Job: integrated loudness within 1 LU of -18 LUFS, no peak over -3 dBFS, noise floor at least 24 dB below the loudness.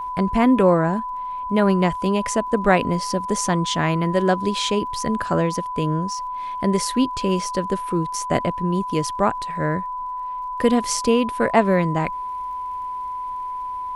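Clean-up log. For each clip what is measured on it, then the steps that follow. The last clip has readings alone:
tick rate 57 per s; steady tone 1 kHz; tone level -26 dBFS; loudness -22.0 LUFS; peak level -2.0 dBFS; loudness target -18.0 LUFS
-> de-click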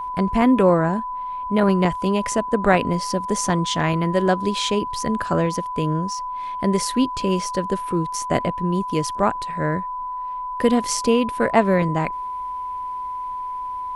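tick rate 0.072 per s; steady tone 1 kHz; tone level -26 dBFS
-> band-stop 1 kHz, Q 30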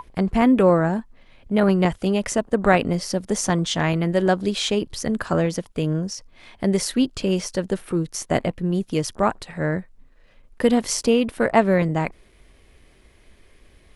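steady tone not found; loudness -22.0 LUFS; peak level -2.5 dBFS; loudness target -18.0 LUFS
-> trim +4 dB; peak limiter -3 dBFS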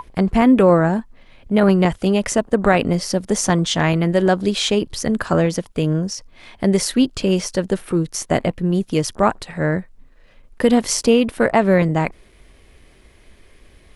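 loudness -18.5 LUFS; peak level -3.0 dBFS; noise floor -50 dBFS

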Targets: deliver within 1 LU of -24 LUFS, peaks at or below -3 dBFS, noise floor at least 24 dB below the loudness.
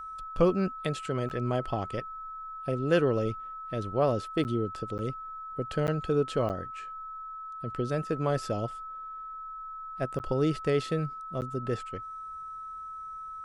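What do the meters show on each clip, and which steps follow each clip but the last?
dropouts 7; longest dropout 9.4 ms; steady tone 1.3 kHz; tone level -38 dBFS; loudness -32.0 LUFS; peak level -12.0 dBFS; loudness target -24.0 LUFS
-> interpolate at 1.29/4.44/4.98/5.87/6.49/10.19/11.41 s, 9.4 ms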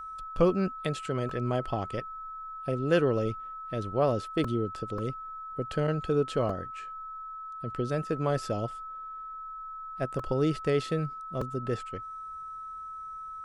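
dropouts 0; steady tone 1.3 kHz; tone level -38 dBFS
-> band-stop 1.3 kHz, Q 30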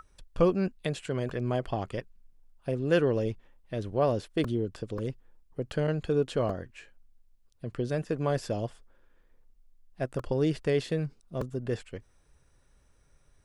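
steady tone not found; loudness -31.0 LUFS; peak level -12.5 dBFS; loudness target -24.0 LUFS
-> trim +7 dB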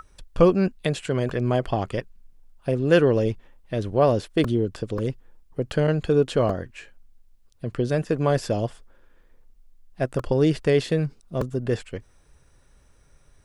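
loudness -24.0 LUFS; peak level -5.5 dBFS; noise floor -58 dBFS

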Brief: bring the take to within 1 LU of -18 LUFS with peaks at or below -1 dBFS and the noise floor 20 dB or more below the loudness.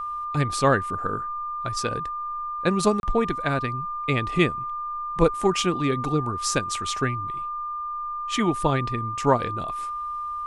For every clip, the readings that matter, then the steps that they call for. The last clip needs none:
dropouts 1; longest dropout 31 ms; steady tone 1.2 kHz; tone level -28 dBFS; loudness -25.5 LUFS; peak level -6.0 dBFS; loudness target -18.0 LUFS
-> interpolate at 3.00 s, 31 ms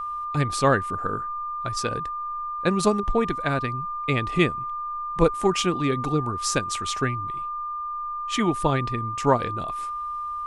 dropouts 0; steady tone 1.2 kHz; tone level -28 dBFS
-> band-stop 1.2 kHz, Q 30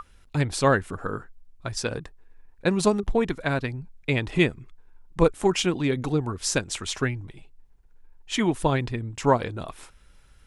steady tone not found; loudness -25.5 LUFS; peak level -6.5 dBFS; loudness target -18.0 LUFS
-> trim +7.5 dB; peak limiter -1 dBFS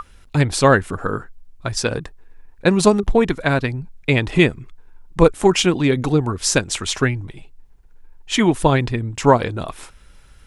loudness -18.5 LUFS; peak level -1.0 dBFS; noise floor -48 dBFS

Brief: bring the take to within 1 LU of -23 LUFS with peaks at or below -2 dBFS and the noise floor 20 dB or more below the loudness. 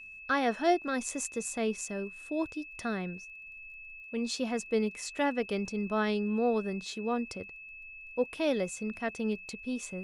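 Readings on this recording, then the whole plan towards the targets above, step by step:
tick rate 20 per s; steady tone 2.6 kHz; tone level -45 dBFS; loudness -32.5 LUFS; peak level -14.5 dBFS; loudness target -23.0 LUFS
-> de-click; band-stop 2.6 kHz, Q 30; trim +9.5 dB

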